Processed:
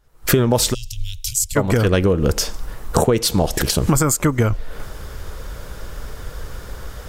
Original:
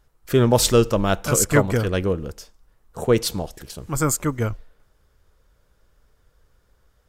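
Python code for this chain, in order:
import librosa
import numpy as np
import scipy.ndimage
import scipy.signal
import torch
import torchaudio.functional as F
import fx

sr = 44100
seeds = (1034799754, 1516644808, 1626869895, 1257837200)

y = fx.recorder_agc(x, sr, target_db=-6.5, rise_db_per_s=78.0, max_gain_db=30)
y = fx.cheby2_bandstop(y, sr, low_hz=230.0, high_hz=1200.0, order=4, stop_db=60, at=(0.73, 1.55), fade=0.02)
y = F.gain(torch.from_numpy(y), -1.0).numpy()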